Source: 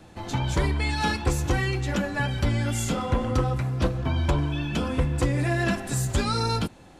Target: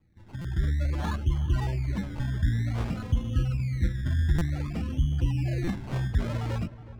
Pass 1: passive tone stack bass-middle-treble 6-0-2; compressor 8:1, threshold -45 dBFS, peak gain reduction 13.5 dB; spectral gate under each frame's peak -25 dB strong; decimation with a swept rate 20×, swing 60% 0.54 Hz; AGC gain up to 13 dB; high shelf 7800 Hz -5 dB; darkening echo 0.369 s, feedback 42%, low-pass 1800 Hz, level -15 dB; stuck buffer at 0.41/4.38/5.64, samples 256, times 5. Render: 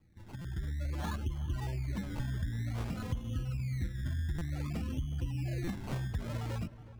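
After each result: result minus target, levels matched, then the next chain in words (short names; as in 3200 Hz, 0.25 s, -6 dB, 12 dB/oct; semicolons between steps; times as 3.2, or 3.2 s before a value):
compressor: peak gain reduction +13.5 dB; 8000 Hz band +5.5 dB
passive tone stack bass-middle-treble 6-0-2; spectral gate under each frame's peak -25 dB strong; decimation with a swept rate 20×, swing 60% 0.54 Hz; AGC gain up to 13 dB; high shelf 7800 Hz -5 dB; darkening echo 0.369 s, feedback 42%, low-pass 1800 Hz, level -15 dB; stuck buffer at 0.41/4.38/5.64, samples 256, times 5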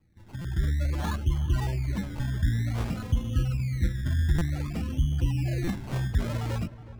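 8000 Hz band +4.5 dB
passive tone stack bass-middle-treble 6-0-2; spectral gate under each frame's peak -25 dB strong; decimation with a swept rate 20×, swing 60% 0.54 Hz; AGC gain up to 13 dB; high shelf 7800 Hz -15.5 dB; darkening echo 0.369 s, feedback 42%, low-pass 1800 Hz, level -15 dB; stuck buffer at 0.41/4.38/5.64, samples 256, times 5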